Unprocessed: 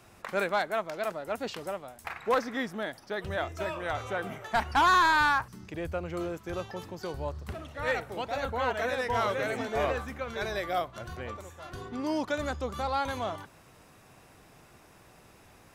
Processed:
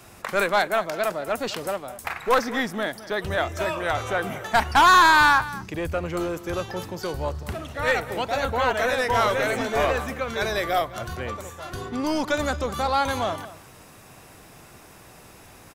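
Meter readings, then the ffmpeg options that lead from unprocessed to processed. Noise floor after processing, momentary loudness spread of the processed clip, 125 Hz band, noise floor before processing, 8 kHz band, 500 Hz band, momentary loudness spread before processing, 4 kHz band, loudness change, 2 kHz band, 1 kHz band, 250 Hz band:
-48 dBFS, 14 LU, +6.5 dB, -57 dBFS, +11.0 dB, +6.5 dB, 14 LU, +9.0 dB, +7.5 dB, +8.0 dB, +7.5 dB, +6.5 dB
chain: -filter_complex "[0:a]highshelf=f=6.4k:g=6,acrossover=split=710|7500[a][b][c];[a]aeval=exprs='clip(val(0),-1,0.0211)':c=same[d];[d][b][c]amix=inputs=3:normalize=0,asplit=2[e][f];[f]adelay=209.9,volume=-16dB,highshelf=f=4k:g=-4.72[g];[e][g]amix=inputs=2:normalize=0,volume=7.5dB"

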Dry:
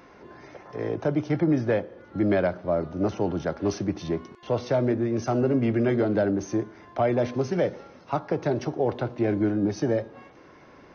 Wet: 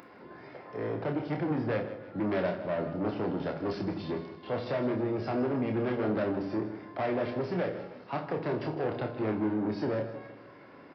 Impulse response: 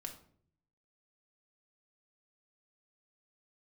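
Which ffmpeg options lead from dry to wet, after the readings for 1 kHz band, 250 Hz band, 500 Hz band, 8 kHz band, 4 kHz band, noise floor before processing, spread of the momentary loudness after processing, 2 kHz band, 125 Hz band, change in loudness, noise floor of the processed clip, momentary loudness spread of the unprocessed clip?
-4.0 dB, -6.0 dB, -6.0 dB, n/a, -4.0 dB, -51 dBFS, 11 LU, -3.5 dB, -7.0 dB, -6.0 dB, -51 dBFS, 9 LU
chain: -filter_complex "[0:a]aresample=11025,asoftclip=type=tanh:threshold=-24.5dB,aresample=44100,highpass=110,equalizer=f=4.1k:t=o:w=0.96:g=-3.5,aecho=1:1:158|316|474|632|790:0.211|0.101|0.0487|0.0234|0.0112,asplit=2[a][b];[1:a]atrim=start_sample=2205,highshelf=f=5.7k:g=11,adelay=28[c];[b][c]afir=irnorm=-1:irlink=0,volume=-2dB[d];[a][d]amix=inputs=2:normalize=0,acompressor=mode=upward:threshold=-48dB:ratio=2.5,volume=-2.5dB"

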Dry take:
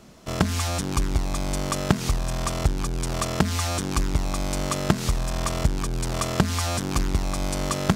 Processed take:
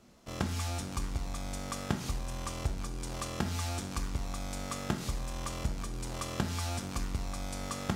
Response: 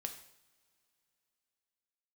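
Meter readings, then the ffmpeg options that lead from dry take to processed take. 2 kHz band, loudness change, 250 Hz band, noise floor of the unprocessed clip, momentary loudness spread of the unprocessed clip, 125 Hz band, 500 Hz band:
-10.5 dB, -11.0 dB, -11.0 dB, -30 dBFS, 4 LU, -10.5 dB, -12.5 dB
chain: -filter_complex "[1:a]atrim=start_sample=2205,asetrate=52920,aresample=44100[a];[0:a][a]afir=irnorm=-1:irlink=0,volume=-7dB"

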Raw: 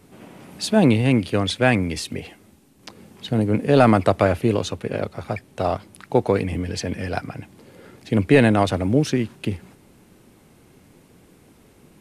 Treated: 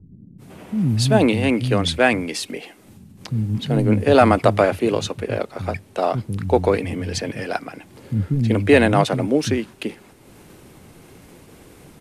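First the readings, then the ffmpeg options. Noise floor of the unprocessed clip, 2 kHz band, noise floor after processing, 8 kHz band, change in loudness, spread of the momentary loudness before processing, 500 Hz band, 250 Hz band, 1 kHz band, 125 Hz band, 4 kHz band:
-54 dBFS, +2.5 dB, -48 dBFS, +2.5 dB, +1.0 dB, 15 LU, +2.0 dB, 0.0 dB, +2.5 dB, +1.5 dB, +2.5 dB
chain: -filter_complex "[0:a]agate=range=-33dB:threshold=-49dB:ratio=3:detection=peak,acrossover=split=210[a][b];[b]adelay=380[c];[a][c]amix=inputs=2:normalize=0,acompressor=mode=upward:threshold=-39dB:ratio=2.5,volume=2.5dB"

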